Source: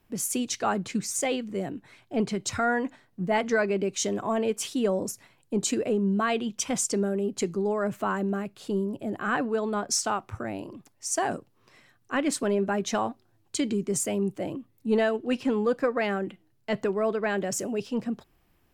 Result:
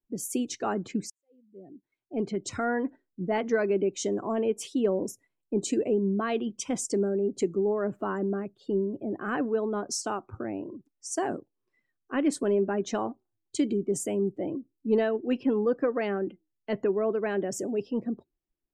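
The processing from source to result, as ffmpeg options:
ffmpeg -i in.wav -filter_complex "[0:a]asplit=2[link_01][link_02];[link_01]atrim=end=1.1,asetpts=PTS-STARTPTS,afade=type=out:start_time=1.096:duration=0.004:curve=hsin[link_03];[link_02]atrim=start=1.1,asetpts=PTS-STARTPTS,afade=type=in:duration=1.3:curve=qua[link_04];[link_03][link_04]concat=n=2:v=0:a=1,afftdn=noise_reduction=24:noise_floor=-45,equalizer=frequency=340:width=1.2:gain=9.5,volume=-6dB" out.wav

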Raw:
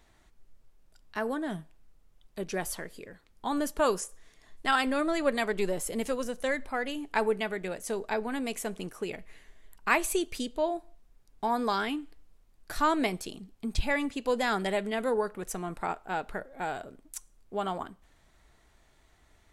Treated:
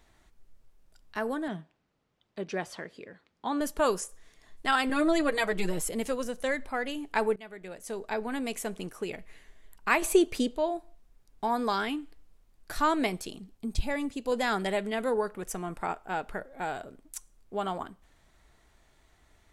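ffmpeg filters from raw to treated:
ffmpeg -i in.wav -filter_complex "[0:a]asettb=1/sr,asplit=3[link_01][link_02][link_03];[link_01]atrim=end=1.484[link_04];[link_02]atrim=start=1.48:end=3.61,asetpts=PTS-STARTPTS,afade=type=in:duration=0.004:curve=qsin,afade=type=out:start_time=2.126:duration=0.004:curve=qsin,highpass=130,lowpass=4600[link_05];[link_03]atrim=start=3.606[link_06];[link_04][link_05]acrossfade=duration=0.004:curve1=hsin:curve2=qsin[link_07];[link_07][link_06]acrossfade=duration=0.004:curve1=qsin:curve2=hsin,asettb=1/sr,asplit=3[link_08][link_09][link_10];[link_08]atrim=end=4.894[link_11];[link_09]atrim=start=4.89:end=5.89,asetpts=PTS-STARTPTS,afade=type=in:duration=0.004:curve=qsin,afade=type=out:start_time=0.996:duration=0.004:curve=qsin,aecho=1:1:6.3:0.82,atrim=end_sample=44100[link_12];[link_10]atrim=start=5.886[link_13];[link_11][link_12]acrossfade=duration=0.004:curve1=hsin:curve2=qsin[link_14];[link_14][link_13]acrossfade=duration=0.004:curve1=qsin:curve2=hsin,asettb=1/sr,asplit=3[link_15][link_16][link_17];[link_15]atrim=end=10.024[link_18];[link_16]atrim=start=10.02:end=10.55,asetpts=PTS-STARTPTS,afade=type=in:duration=0.004:curve=qsin,afade=type=out:start_time=0.526:duration=0.004:curve=qsin,equalizer=frequency=470:width=0.32:gain=8[link_19];[link_17]atrim=start=10.546[link_20];[link_18][link_19]acrossfade=duration=0.004:curve1=hsin:curve2=qsin[link_21];[link_21][link_20]acrossfade=duration=0.004:curve1=qsin:curve2=hsin,asettb=1/sr,asplit=3[link_22][link_23][link_24];[link_22]atrim=end=13.574[link_25];[link_23]atrim=start=13.57:end=14.32,asetpts=PTS-STARTPTS,afade=type=in:duration=0.004:curve=qsin,afade=type=out:start_time=0.746:duration=0.004:curve=qsin,equalizer=frequency=1800:width=0.53:gain=-6.5[link_26];[link_24]atrim=start=14.316[link_27];[link_25][link_26]acrossfade=duration=0.004:curve1=hsin:curve2=qsin[link_28];[link_28][link_27]acrossfade=duration=0.004:curve1=qsin:curve2=hsin,asettb=1/sr,asplit=3[link_29][link_30][link_31];[link_29]atrim=end=15.424[link_32];[link_30]atrim=start=15.42:end=16.38,asetpts=PTS-STARTPTS,afade=type=in:duration=0.004:curve=qsin,afade=type=out:start_time=0.956:duration=0.004:curve=qsin,bandreject=frequency=4000:width=12[link_33];[link_31]atrim=start=16.376[link_34];[link_32][link_33]acrossfade=duration=0.004:curve1=hsin:curve2=qsin[link_35];[link_35][link_34]acrossfade=duration=0.004:curve1=qsin:curve2=hsin,asplit=2[link_36][link_37];[link_36]atrim=end=7.36,asetpts=PTS-STARTPTS,afade=type=out:start_time=7.356:duration=0.004:curve=hsin:silence=0.133352[link_38];[link_37]atrim=start=7.36,asetpts=PTS-STARTPTS,afade=type=in:duration=0.96:silence=0.133352[link_39];[link_38][link_39]concat=n=2:v=0:a=1" out.wav

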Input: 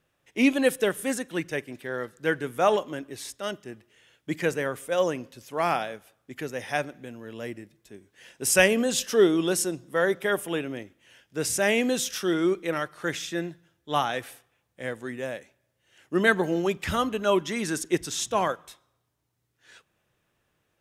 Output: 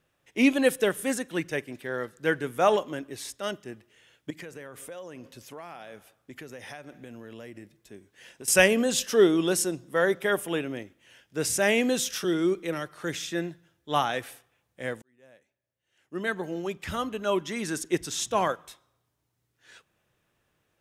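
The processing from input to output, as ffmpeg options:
ffmpeg -i in.wav -filter_complex "[0:a]asettb=1/sr,asplit=3[link_01][link_02][link_03];[link_01]atrim=end=4.304[link_04];[link_02]atrim=start=4.3:end=8.48,asetpts=PTS-STARTPTS,afade=type=in:duration=0.004:curve=qsin,afade=type=out:start_time=4.176:duration=0.004:curve=qsin,acompressor=threshold=-38dB:ratio=8:attack=3.2:release=140:knee=1:detection=peak[link_05];[link_03]atrim=start=8.476[link_06];[link_04][link_05]acrossfade=duration=0.004:curve1=hsin:curve2=qsin[link_07];[link_07][link_06]acrossfade=duration=0.004:curve1=qsin:curve2=hsin,asettb=1/sr,asplit=3[link_08][link_09][link_10];[link_08]atrim=end=12.244[link_11];[link_09]atrim=start=12.24:end=13.31,asetpts=PTS-STARTPTS,afade=type=in:duration=0.004:curve=qsin,afade=type=out:start_time=1.066:duration=0.004:curve=qsin,acrossover=split=460|3000[link_12][link_13][link_14];[link_13]acompressor=threshold=-43dB:ratio=1.5:attack=3.2:release=140:knee=2.83:detection=peak[link_15];[link_12][link_15][link_14]amix=inputs=3:normalize=0[link_16];[link_10]atrim=start=13.306[link_17];[link_11][link_16]acrossfade=duration=0.004:curve1=hsin:curve2=qsin[link_18];[link_18][link_17]acrossfade=duration=0.004:curve1=qsin:curve2=hsin,asplit=2[link_19][link_20];[link_19]atrim=end=15.02,asetpts=PTS-STARTPTS,afade=type=out:start_time=15.016:duration=0.004:curve=hsin[link_21];[link_20]atrim=start=15.02,asetpts=PTS-STARTPTS,afade=type=in:duration=3.51[link_22];[link_21][link_22]concat=n=2:v=0:a=1" out.wav

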